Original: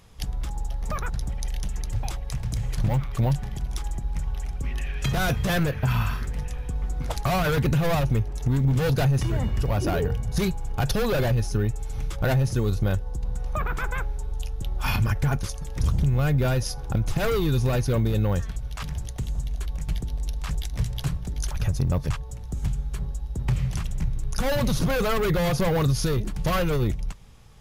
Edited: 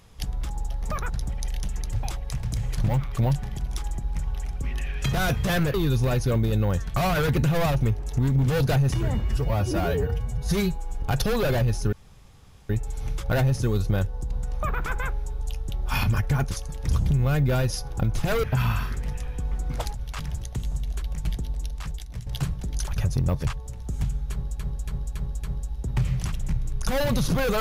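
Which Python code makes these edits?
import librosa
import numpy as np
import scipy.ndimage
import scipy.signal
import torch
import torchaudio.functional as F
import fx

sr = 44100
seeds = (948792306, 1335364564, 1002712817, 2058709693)

y = fx.edit(x, sr, fx.swap(start_s=5.74, length_s=1.51, other_s=17.36, other_length_s=1.22),
    fx.stretch_span(start_s=9.53, length_s=1.19, factor=1.5),
    fx.insert_room_tone(at_s=11.62, length_s=0.77),
    fx.fade_out_to(start_s=20.07, length_s=0.83, floor_db=-11.5),
    fx.repeat(start_s=22.95, length_s=0.28, count=5), tone=tone)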